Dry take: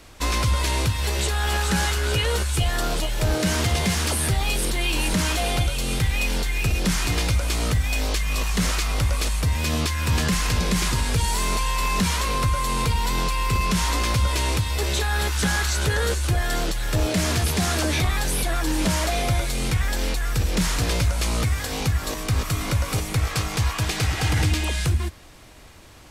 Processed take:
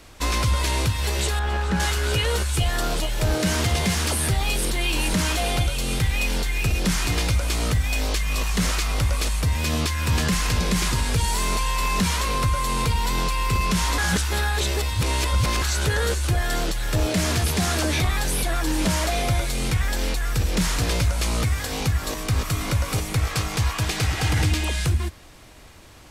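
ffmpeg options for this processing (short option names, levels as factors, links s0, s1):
-filter_complex "[0:a]asettb=1/sr,asplit=3[s0][s1][s2];[s0]atrim=end=1.394[s3];[s1]atrim=start=1.39:end=1.8,asetpts=PTS-STARTPTS,afade=t=in:d=0.004:c=qsin,afade=t=out:st=0.406:d=0.004:c=qsin,lowpass=f=1500:p=1[s4];[s2]atrim=start=1.796[s5];[s3][s4]acrossfade=d=0.004:c1=hsin:c2=qsin[s6];[s6][s5]acrossfade=d=0.004:c1=qsin:c2=hsin,asplit=3[s7][s8][s9];[s7]atrim=end=13.982[s10];[s8]atrim=start=13.978:end=15.622,asetpts=PTS-STARTPTS,areverse[s11];[s9]atrim=start=15.618[s12];[s10][s11]acrossfade=d=0.004:c1=hsin:c2=hsin[s13];[s13][s12]acrossfade=d=0.004:c1=hsin:c2=hsin"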